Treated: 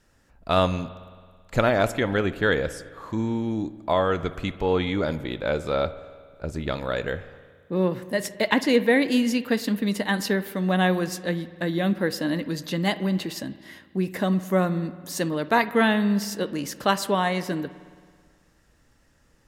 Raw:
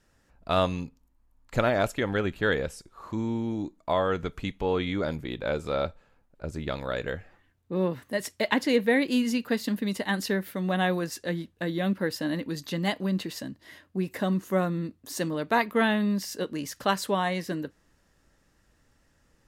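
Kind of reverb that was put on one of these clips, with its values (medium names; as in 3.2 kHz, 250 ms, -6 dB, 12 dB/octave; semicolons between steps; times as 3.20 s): spring tank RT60 1.8 s, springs 54 ms, chirp 25 ms, DRR 14.5 dB; trim +3.5 dB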